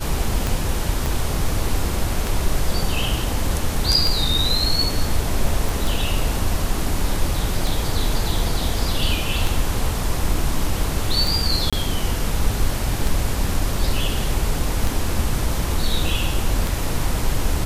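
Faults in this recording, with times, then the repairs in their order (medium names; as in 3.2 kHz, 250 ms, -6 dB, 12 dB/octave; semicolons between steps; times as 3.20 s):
tick 33 1/3 rpm
1.06 s: pop
5.69 s: pop
11.70–11.73 s: dropout 26 ms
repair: de-click; interpolate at 11.70 s, 26 ms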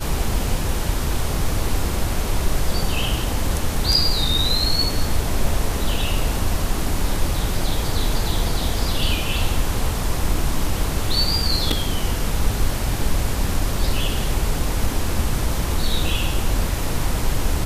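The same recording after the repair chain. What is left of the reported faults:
1.06 s: pop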